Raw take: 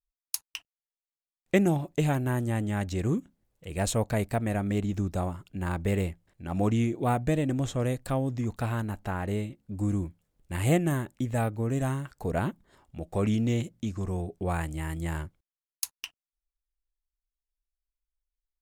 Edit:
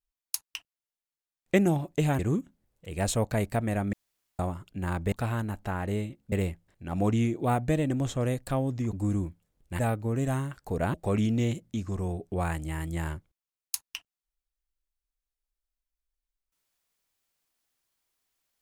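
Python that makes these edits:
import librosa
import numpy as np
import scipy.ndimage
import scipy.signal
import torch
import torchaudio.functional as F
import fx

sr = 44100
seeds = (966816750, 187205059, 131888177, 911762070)

y = fx.edit(x, sr, fx.cut(start_s=2.19, length_s=0.79),
    fx.room_tone_fill(start_s=4.72, length_s=0.46),
    fx.move(start_s=8.52, length_s=1.2, to_s=5.91),
    fx.cut(start_s=10.58, length_s=0.75),
    fx.cut(start_s=12.48, length_s=0.55), tone=tone)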